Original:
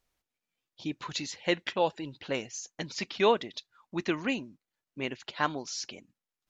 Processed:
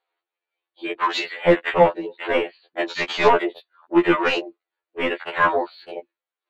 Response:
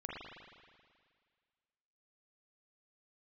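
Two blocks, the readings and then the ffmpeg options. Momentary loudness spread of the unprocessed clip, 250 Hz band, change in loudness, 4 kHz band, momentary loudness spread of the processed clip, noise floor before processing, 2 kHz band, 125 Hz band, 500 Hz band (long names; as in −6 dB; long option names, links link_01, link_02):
15 LU, +10.5 dB, +11.0 dB, +6.0 dB, 16 LU, below −85 dBFS, +12.0 dB, +7.0 dB, +11.0 dB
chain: -filter_complex "[0:a]afftfilt=real='re*between(b*sr/4096,320,4700)':imag='im*between(b*sr/4096,320,4700)':win_size=4096:overlap=0.75,asplit=2[link_01][link_02];[link_02]highpass=frequency=720:poles=1,volume=26dB,asoftclip=type=tanh:threshold=-12dB[link_03];[link_01][link_03]amix=inputs=2:normalize=0,lowpass=frequency=1200:poles=1,volume=-6dB,afwtdn=0.0178,afftfilt=real='re*2*eq(mod(b,4),0)':imag='im*2*eq(mod(b,4),0)':win_size=2048:overlap=0.75,volume=8.5dB"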